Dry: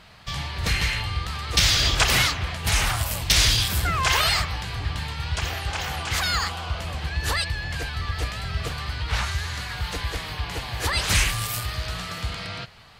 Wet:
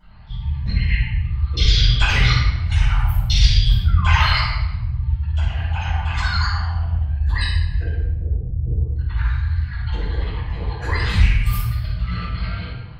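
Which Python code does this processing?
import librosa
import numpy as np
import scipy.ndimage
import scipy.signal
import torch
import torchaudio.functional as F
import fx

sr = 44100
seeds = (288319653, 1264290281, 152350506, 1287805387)

y = fx.envelope_sharpen(x, sr, power=3.0)
y = fx.steep_lowpass(y, sr, hz=740.0, slope=48, at=(7.97, 8.96))
y = fx.room_shoebox(y, sr, seeds[0], volume_m3=500.0, walls='mixed', distance_m=7.2)
y = y * 10.0 ** (-11.0 / 20.0)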